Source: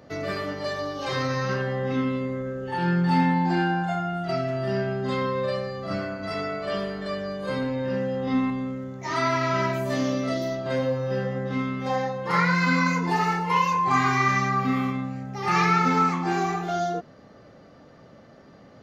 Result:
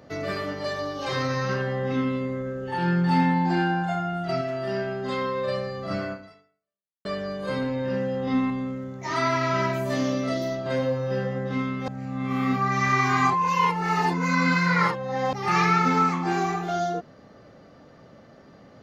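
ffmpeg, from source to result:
-filter_complex "[0:a]asettb=1/sr,asplit=3[s0][s1][s2];[s0]atrim=end=4.414[s3];[s1]atrim=start=4.41:end=5.48,asetpts=PTS-STARTPTS,afade=t=in:d=0.004:c=qsin,afade=t=out:st=1.066:d=0.004:c=qsin,equalizer=f=110:t=o:w=2:g=-7.5[s4];[s2]atrim=start=5.476[s5];[s3][s4]acrossfade=d=0.004:c1=hsin:c2=qsin[s6];[s6][s5]acrossfade=d=0.004:c1=qsin:c2=hsin,asplit=4[s7][s8][s9][s10];[s7]atrim=end=7.05,asetpts=PTS-STARTPTS,afade=t=out:st=6.12:d=0.93:c=exp[s11];[s8]atrim=start=7.05:end=11.882,asetpts=PTS-STARTPTS,afade=t=in:d=0.004:c=hsin[s12];[s9]atrim=start=11.878:end=15.332,asetpts=PTS-STARTPTS,areverse[s13];[s10]atrim=start=15.328[s14];[s11][s12]concat=n=2:v=0:a=1[s15];[s15][s13]acrossfade=d=0.004:c1=hsin:c2=hsin[s16];[s16][s14]acrossfade=d=0.004:c1=hsin:c2=hsin"

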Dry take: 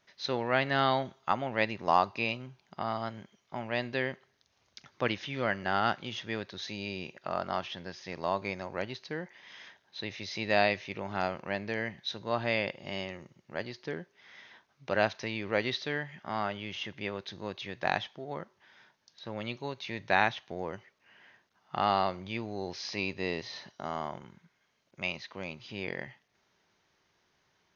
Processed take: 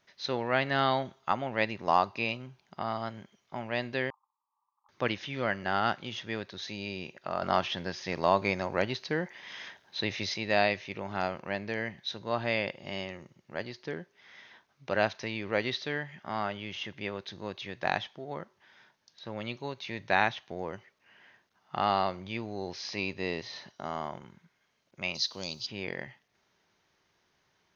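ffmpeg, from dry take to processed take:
-filter_complex "[0:a]asettb=1/sr,asplit=3[s0][s1][s2];[s0]atrim=end=4.104[s3];[s1]atrim=start=4.1:end=4.89,asetpts=PTS-STARTPTS,afade=t=in:d=0.004:c=qsin,afade=t=out:st=0.786:d=0.004:c=qsin,asuperpass=centerf=1000:order=12:qfactor=2.6[s4];[s2]atrim=start=4.886[s5];[s3][s4]acrossfade=d=0.004:c1=hsin:c2=qsin[s6];[s6][s5]acrossfade=d=0.004:c1=qsin:c2=hsin,asettb=1/sr,asplit=3[s7][s8][s9];[s7]atrim=end=7.424[s10];[s8]atrim=start=7.42:end=10.34,asetpts=PTS-STARTPTS,afade=t=in:d=0.004:c=qsin,afade=t=out:st=2.916:d=0.004:c=qsin,acontrast=62[s11];[s9]atrim=start=10.336[s12];[s10][s11]acrossfade=d=0.004:c1=hsin:c2=qsin[s13];[s13][s12]acrossfade=d=0.004:c1=qsin:c2=hsin,asplit=3[s14][s15][s16];[s14]afade=t=out:st=25.14:d=0.02[s17];[s15]highshelf=f=3200:t=q:w=3:g=13.5,afade=t=in:st=25.14:d=0.02,afade=t=out:st=25.65:d=0.02[s18];[s16]afade=t=in:st=25.65:d=0.02[s19];[s17][s18][s19]amix=inputs=3:normalize=0"

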